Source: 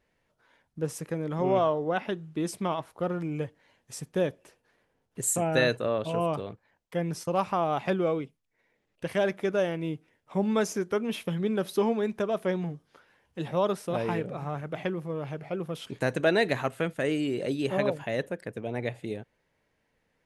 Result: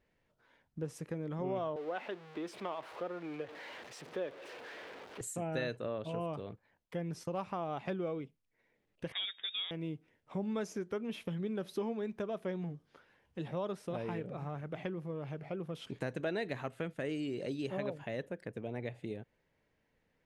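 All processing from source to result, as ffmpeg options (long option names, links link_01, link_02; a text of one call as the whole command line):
ffmpeg -i in.wav -filter_complex "[0:a]asettb=1/sr,asplit=3[link_01][link_02][link_03];[link_01]atrim=end=1.764[link_04];[link_02]atrim=start=1.76:end=5.21,asetpts=PTS-STARTPTS,afade=type=in:duration=0.004:curve=qsin,afade=type=out:start_time=3.446:duration=0.004:curve=qsin,aeval=exprs='val(0)+0.5*0.015*sgn(val(0))':channel_layout=same,highpass=58,acrossover=split=330 4400:gain=0.0891 1 0.2[link_05][link_06][link_07];[link_05][link_06][link_07]amix=inputs=3:normalize=0[link_08];[link_03]atrim=start=5.206[link_09];[link_04][link_08]acrossfade=duration=0.004:curve1=hsin:curve2=qsin[link_10];[link_10][link_09]acrossfade=duration=0.004:curve1=qsin:curve2=hsin,asettb=1/sr,asplit=3[link_11][link_12][link_13];[link_11]atrim=end=9.124[link_14];[link_12]atrim=start=9.12:end=9.71,asetpts=PTS-STARTPTS,afade=type=in:duration=0.004:curve=qsin,afade=type=out:start_time=0.586:duration=0.004:curve=qsin,highpass=180,lowpass=frequency=3300:width_type=q:width=0.5098,lowpass=frequency=3300:width_type=q:width=0.6013,lowpass=frequency=3300:width_type=q:width=0.9,lowpass=frequency=3300:width_type=q:width=2.563,afreqshift=-3900[link_15];[link_13]atrim=start=9.706[link_16];[link_14][link_15]acrossfade=duration=0.004:curve1=hsin:curve2=qsin[link_17];[link_17][link_16]acrossfade=duration=0.004:curve1=qsin:curve2=hsin,asettb=1/sr,asplit=3[link_18][link_19][link_20];[link_18]atrim=end=17.094[link_21];[link_19]atrim=start=17.09:end=17.71,asetpts=PTS-STARTPTS,afade=type=in:duration=0.004:curve=qsin,afade=type=out:start_time=0.616:duration=0.004:curve=qsin,equalizer=frequency=5400:width=1.2:gain=6,bandreject=frequency=3500:width=21[link_22];[link_20]atrim=start=17.706[link_23];[link_21][link_22]acrossfade=duration=0.004:curve1=hsin:curve2=qsin[link_24];[link_24][link_23]acrossfade=duration=0.004:curve1=qsin:curve2=hsin,equalizer=frequency=1000:width=0.64:gain=-3,acompressor=threshold=-38dB:ratio=2,lowpass=frequency=3700:poles=1,volume=-1.5dB" out.wav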